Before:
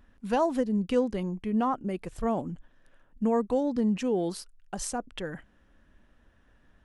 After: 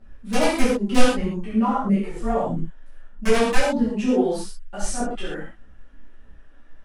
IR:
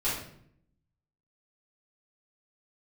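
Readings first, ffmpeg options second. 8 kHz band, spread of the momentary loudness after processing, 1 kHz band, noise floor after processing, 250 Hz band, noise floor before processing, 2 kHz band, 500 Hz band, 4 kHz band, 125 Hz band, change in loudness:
+8.5 dB, 12 LU, +6.0 dB, -45 dBFS, +6.0 dB, -63 dBFS, +14.5 dB, +5.5 dB, +13.0 dB, +6.5 dB, +6.0 dB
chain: -filter_complex "[0:a]aeval=exprs='(mod(7.5*val(0)+1,2)-1)/7.5':c=same,aphaser=in_gain=1:out_gain=1:delay=4.2:decay=0.65:speed=1.6:type=triangular[s0];[1:a]atrim=start_sample=2205,atrim=end_sample=3528,asetrate=22932,aresample=44100[s1];[s0][s1]afir=irnorm=-1:irlink=0,volume=0.355"

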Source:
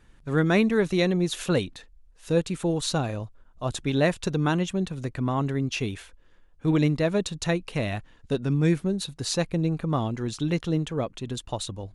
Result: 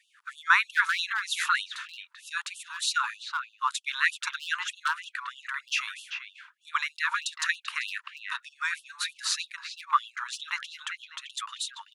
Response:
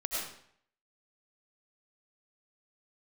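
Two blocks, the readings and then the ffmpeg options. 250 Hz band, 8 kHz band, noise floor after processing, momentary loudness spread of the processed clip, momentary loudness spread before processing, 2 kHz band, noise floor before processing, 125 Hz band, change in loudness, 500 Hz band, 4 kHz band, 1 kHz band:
under -40 dB, +0.5 dB, -67 dBFS, 12 LU, 10 LU, +7.5 dB, -56 dBFS, under -40 dB, -3.5 dB, under -40 dB, +2.5 dB, +4.0 dB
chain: -filter_complex "[0:a]equalizer=f=1300:t=o:w=1.3:g=13.5,asplit=2[s0][s1];[s1]adelay=390,highpass=300,lowpass=3400,asoftclip=type=hard:threshold=0.237,volume=0.501[s2];[s0][s2]amix=inputs=2:normalize=0,afftfilt=real='re*gte(b*sr/1024,850*pow(2700/850,0.5+0.5*sin(2*PI*3.2*pts/sr)))':imag='im*gte(b*sr/1024,850*pow(2700/850,0.5+0.5*sin(2*PI*3.2*pts/sr)))':win_size=1024:overlap=0.75"

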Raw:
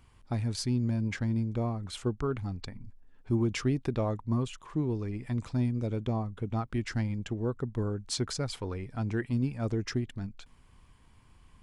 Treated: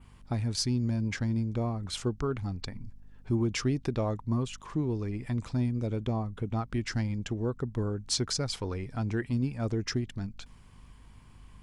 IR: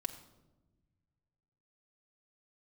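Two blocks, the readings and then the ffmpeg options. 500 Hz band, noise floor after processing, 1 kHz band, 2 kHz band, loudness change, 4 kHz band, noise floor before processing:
0.0 dB, -54 dBFS, +0.5 dB, +1.0 dB, +0.5 dB, +4.5 dB, -59 dBFS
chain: -filter_complex "[0:a]asplit=2[s0][s1];[s1]acompressor=threshold=0.0141:ratio=6,volume=0.891[s2];[s0][s2]amix=inputs=2:normalize=0,adynamicequalizer=threshold=0.00251:dfrequency=5500:dqfactor=1.6:tfrequency=5500:tqfactor=1.6:attack=5:release=100:ratio=0.375:range=3:mode=boostabove:tftype=bell,aeval=exprs='val(0)+0.00224*(sin(2*PI*50*n/s)+sin(2*PI*2*50*n/s)/2+sin(2*PI*3*50*n/s)/3+sin(2*PI*4*50*n/s)/4+sin(2*PI*5*50*n/s)/5)':c=same,volume=0.794"

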